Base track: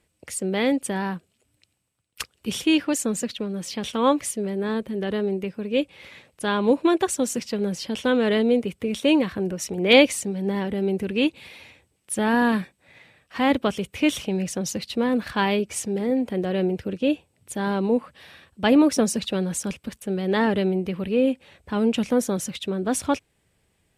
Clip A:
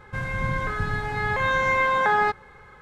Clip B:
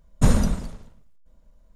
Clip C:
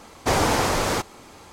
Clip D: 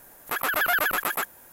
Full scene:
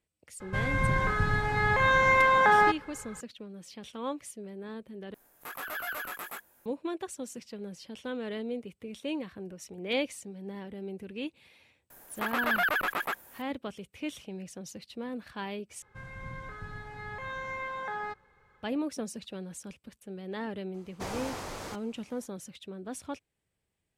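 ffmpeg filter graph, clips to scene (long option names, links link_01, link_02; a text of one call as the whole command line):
ffmpeg -i bed.wav -i cue0.wav -i cue1.wav -i cue2.wav -i cue3.wav -filter_complex "[1:a]asplit=2[link_01][link_02];[4:a]asplit=2[link_03][link_04];[0:a]volume=-15.5dB[link_05];[link_03]flanger=delay=19:depth=4.4:speed=1.5[link_06];[link_04]acrossover=split=4500[link_07][link_08];[link_08]acompressor=threshold=-41dB:ratio=4:attack=1:release=60[link_09];[link_07][link_09]amix=inputs=2:normalize=0[link_10];[link_05]asplit=3[link_11][link_12][link_13];[link_11]atrim=end=5.144[link_14];[link_06]atrim=end=1.52,asetpts=PTS-STARTPTS,volume=-10dB[link_15];[link_12]atrim=start=6.656:end=15.824[link_16];[link_02]atrim=end=2.81,asetpts=PTS-STARTPTS,volume=-15.5dB[link_17];[link_13]atrim=start=18.626[link_18];[link_01]atrim=end=2.81,asetpts=PTS-STARTPTS,volume=-0.5dB,afade=type=in:duration=0.004:curve=hsin,afade=type=out:start_time=2.806:duration=0.004:curve=hsin,adelay=400[link_19];[link_10]atrim=end=1.52,asetpts=PTS-STARTPTS,volume=-3.5dB,afade=type=in:duration=0.004:curve=hsin,afade=type=out:start_time=1.516:duration=0.004:curve=hsin,adelay=11900[link_20];[3:a]atrim=end=1.52,asetpts=PTS-STARTPTS,volume=-17dB,afade=type=in:duration=0.004:curve=hsin,afade=type=out:start_time=1.516:duration=0.004:curve=hsin,adelay=20740[link_21];[link_14][link_15]acrossfade=duration=0.004:curve1=hsin:curve2=hsin[link_22];[link_22][link_16]acrossfade=duration=0.004:curve1=hsin:curve2=hsin[link_23];[link_23][link_17]acrossfade=duration=0.004:curve1=hsin:curve2=hsin[link_24];[link_24][link_18]acrossfade=duration=0.004:curve1=hsin:curve2=hsin[link_25];[link_25][link_19][link_20][link_21]amix=inputs=4:normalize=0" out.wav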